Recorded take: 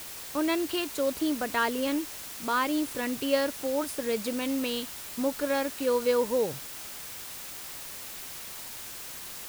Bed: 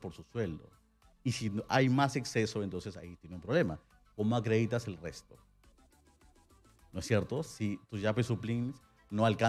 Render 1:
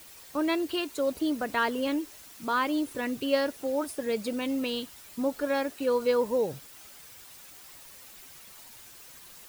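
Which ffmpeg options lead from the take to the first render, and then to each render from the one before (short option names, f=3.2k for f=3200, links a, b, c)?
-af "afftdn=nr=10:nf=-41"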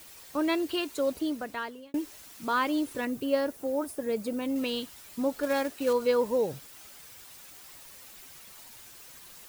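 -filter_complex "[0:a]asettb=1/sr,asplit=3[a][b][c];[a]atrim=end=3.054[d];[b]atrim=start=3.05:end=4.56,asetpts=PTS-STARTPTS,afade=t=in:d=0.004:c=qsin,afade=t=out:st=1.506:d=0.004:c=qsin,equalizer=f=3.4k:w=0.5:g=-7.5[e];[c]atrim=start=4.556[f];[d][e]acrossfade=d=0.004:c1=hsin:c2=qsin[g];[g][f]acrossfade=d=0.004:c1=qsin:c2=hsin,asettb=1/sr,asplit=3[h][i][j];[h]atrim=end=5.434[k];[i]atrim=start=5.43:end=5.93,asetpts=PTS-STARTPTS,afade=t=in:d=0.004:c=qsin,afade=t=out:st=0.496:d=0.004:c=qsin,acrusher=bits=4:mode=log:mix=0:aa=0.000001[l];[j]atrim=start=5.926[m];[k][l]acrossfade=d=0.004:c1=hsin:c2=qsin[n];[n][m]acrossfade=d=0.004:c1=qsin:c2=hsin,asplit=2[o][p];[o]atrim=end=1.94,asetpts=PTS-STARTPTS,afade=t=out:st=1.06:d=0.88[q];[p]atrim=start=1.94,asetpts=PTS-STARTPTS,afade=t=in:d=0.004:c=hsin[r];[q][r]concat=n=2:v=0:a=1"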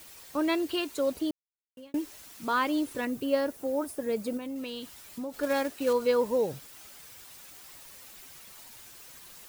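-filter_complex "[0:a]asettb=1/sr,asplit=3[a][b][c];[a]atrim=end=4.374[d];[b]atrim=start=4.37:end=5.34,asetpts=PTS-STARTPTS,afade=t=in:d=0.004:c=qsin,afade=t=out:st=0.966:d=0.004:c=qsin,acompressor=threshold=-35dB:ratio=3:attack=3.2:release=140:knee=1:detection=peak[e];[c]atrim=start=5.336[f];[d][e]acrossfade=d=0.004:c1=hsin:c2=qsin[g];[g][f]acrossfade=d=0.004:c1=qsin:c2=hsin,asplit=3[h][i][j];[h]atrim=end=1.31,asetpts=PTS-STARTPTS,afade=t=out:st=1.306:d=0.004:c=hsin[k];[i]atrim=start=1.31:end=1.77,asetpts=PTS-STARTPTS,volume=0[l];[j]atrim=start=1.77,asetpts=PTS-STARTPTS,afade=t=in:d=0.004:c=hsin[m];[k][l][m]concat=n=3:v=0:a=1"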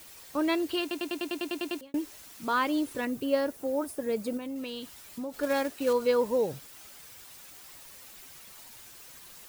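-filter_complex "[0:a]asplit=11[a][b][c][d][e][f][g][h][i][j][k];[a]atrim=end=0.912[l];[b]atrim=start=0.808:end=0.912[m];[c]atrim=start=0.808:end=0.912[n];[d]atrim=start=0.808:end=0.912[o];[e]atrim=start=0.808:end=0.912[p];[f]atrim=start=0.808:end=0.912[q];[g]atrim=start=0.808:end=0.912[r];[h]atrim=start=0.808:end=0.912[s];[i]atrim=start=0.808:end=0.912[t];[j]atrim=start=0.808:end=0.912[u];[k]atrim=start=1.808[v];[l][m]acrossfade=d=0.004:c1=hsin:c2=hsin[w];[w][n]acrossfade=d=0.004:c1=hsin:c2=hsin[x];[x][o]acrossfade=d=0.004:c1=hsin:c2=hsin[y];[y][p]acrossfade=d=0.004:c1=hsin:c2=hsin[z];[z][q]acrossfade=d=0.004:c1=hsin:c2=hsin[aa];[aa][r]acrossfade=d=0.004:c1=hsin:c2=hsin[ab];[ab][s]acrossfade=d=0.004:c1=hsin:c2=hsin[ac];[ac][t]acrossfade=d=0.004:c1=hsin:c2=hsin[ad];[ad][u]acrossfade=d=0.004:c1=hsin:c2=hsin[ae];[ae][v]acrossfade=d=0.004:c1=hsin:c2=hsin"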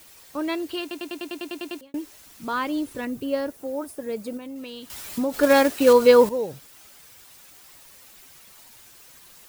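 -filter_complex "[0:a]asettb=1/sr,asplit=3[a][b][c];[a]atrim=end=2.264[d];[b]atrim=start=2.26:end=3.5,asetpts=PTS-STARTPTS,afade=t=in:d=0.004:c=qsin,afade=t=out:st=1.236:d=0.004:c=qsin,lowshelf=f=180:g=7[e];[c]atrim=start=3.496[f];[d][e]acrossfade=d=0.004:c1=hsin:c2=qsin[g];[g][f]acrossfade=d=0.004:c1=qsin:c2=hsin,asplit=3[h][i][j];[h]atrim=end=4.902[k];[i]atrim=start=4.898:end=6.292,asetpts=PTS-STARTPTS,volume=11.5dB[l];[j]atrim=start=6.288[m];[k][l]acrossfade=d=0.004:c1=hsin:c2=hsin[n];[n][m]acrossfade=d=0.004:c1=hsin:c2=hsin"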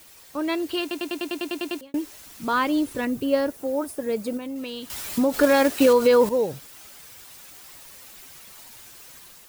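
-af "alimiter=limit=-12.5dB:level=0:latency=1:release=134,dynaudnorm=f=400:g=3:m=4dB"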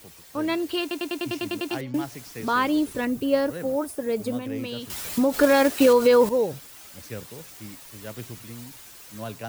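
-filter_complex "[1:a]volume=-7dB[a];[0:a][a]amix=inputs=2:normalize=0"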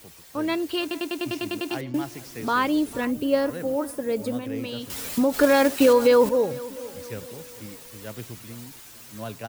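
-filter_complex "[0:a]asplit=2[a][b];[b]adelay=449,lowpass=f=2k:p=1,volume=-18dB,asplit=2[c][d];[d]adelay=449,lowpass=f=2k:p=1,volume=0.48,asplit=2[e][f];[f]adelay=449,lowpass=f=2k:p=1,volume=0.48,asplit=2[g][h];[h]adelay=449,lowpass=f=2k:p=1,volume=0.48[i];[a][c][e][g][i]amix=inputs=5:normalize=0"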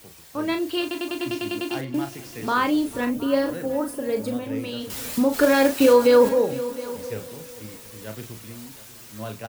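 -filter_complex "[0:a]asplit=2[a][b];[b]adelay=37,volume=-7dB[c];[a][c]amix=inputs=2:normalize=0,aecho=1:1:717:0.133"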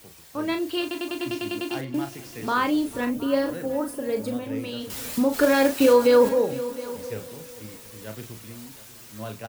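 -af "volume=-1.5dB"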